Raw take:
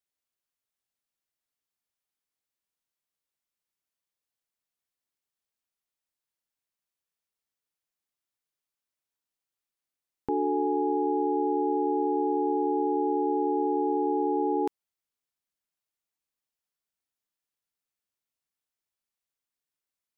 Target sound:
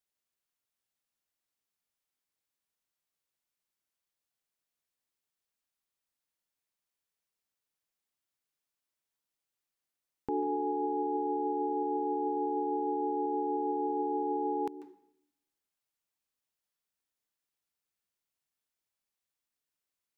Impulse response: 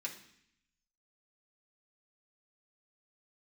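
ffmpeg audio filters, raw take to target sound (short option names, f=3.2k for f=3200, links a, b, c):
-filter_complex "[0:a]alimiter=limit=-23.5dB:level=0:latency=1:release=34,asplit=2[a][b];[1:a]atrim=start_sample=2205,adelay=142[c];[b][c]afir=irnorm=-1:irlink=0,volume=-12dB[d];[a][d]amix=inputs=2:normalize=0"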